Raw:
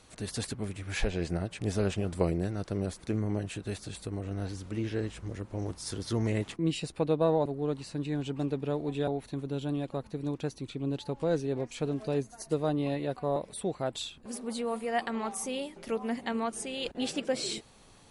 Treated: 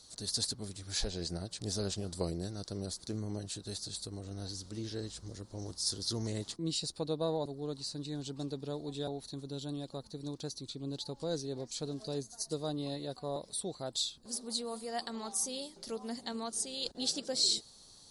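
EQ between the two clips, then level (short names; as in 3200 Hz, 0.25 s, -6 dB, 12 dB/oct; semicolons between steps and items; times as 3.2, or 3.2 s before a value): resonant high shelf 3300 Hz +10 dB, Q 3; -7.5 dB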